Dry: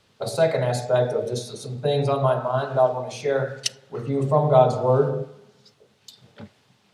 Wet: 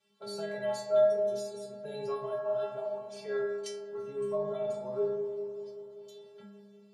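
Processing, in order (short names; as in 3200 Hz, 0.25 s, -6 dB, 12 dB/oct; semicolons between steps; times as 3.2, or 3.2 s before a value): HPF 110 Hz; limiter -13 dBFS, peak gain reduction 9 dB; metallic resonator 200 Hz, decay 0.84 s, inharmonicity 0.008; on a send: dark delay 0.194 s, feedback 73%, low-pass 1300 Hz, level -13 dB; on the sum: gain +5.5 dB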